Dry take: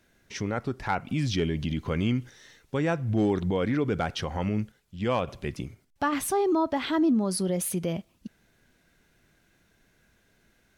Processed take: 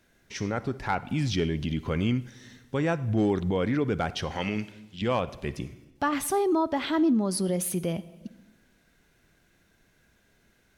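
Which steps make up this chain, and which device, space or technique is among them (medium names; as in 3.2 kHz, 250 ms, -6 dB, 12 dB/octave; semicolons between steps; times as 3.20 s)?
4.31–5.02 s: frequency weighting D; compressed reverb return (on a send at -10 dB: reverberation RT60 0.85 s, pre-delay 46 ms + compression, threshold -33 dBFS, peak gain reduction 14 dB)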